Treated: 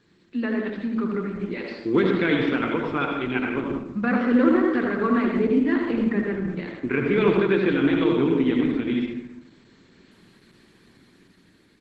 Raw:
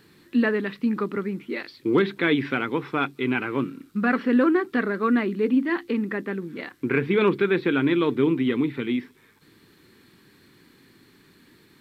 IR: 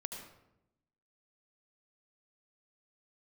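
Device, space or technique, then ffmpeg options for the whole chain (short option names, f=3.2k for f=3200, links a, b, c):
speakerphone in a meeting room: -filter_complex "[0:a]asplit=3[a][b][c];[a]afade=t=out:st=5.93:d=0.02[d];[b]adynamicequalizer=threshold=0.01:dfrequency=140:dqfactor=1.5:tfrequency=140:tqfactor=1.5:attack=5:release=100:ratio=0.375:range=2.5:mode=boostabove:tftype=bell,afade=t=in:st=5.93:d=0.02,afade=t=out:st=6.59:d=0.02[e];[c]afade=t=in:st=6.59:d=0.02[f];[d][e][f]amix=inputs=3:normalize=0,asplit=2[g][h];[h]adelay=78,lowpass=f=2.5k:p=1,volume=-9dB,asplit=2[i][j];[j]adelay=78,lowpass=f=2.5k:p=1,volume=0.17,asplit=2[k][l];[l]adelay=78,lowpass=f=2.5k:p=1,volume=0.17[m];[g][i][k][m]amix=inputs=4:normalize=0[n];[1:a]atrim=start_sample=2205[o];[n][o]afir=irnorm=-1:irlink=0,dynaudnorm=f=280:g=9:m=6dB,volume=-3.5dB" -ar 48000 -c:a libopus -b:a 12k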